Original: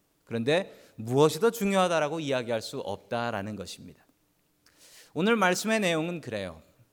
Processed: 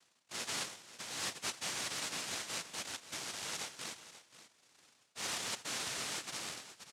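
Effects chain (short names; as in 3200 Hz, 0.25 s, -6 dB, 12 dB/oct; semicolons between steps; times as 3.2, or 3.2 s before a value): tracing distortion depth 0.058 ms; low-pass opened by the level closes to 990 Hz, open at -19 dBFS; tilt -3 dB/oct; reverse; compressor 5:1, threshold -36 dBFS, peak gain reduction 21 dB; reverse; noise vocoder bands 1; on a send: echo 0.534 s -14.5 dB; on the sum: gain -3.5 dB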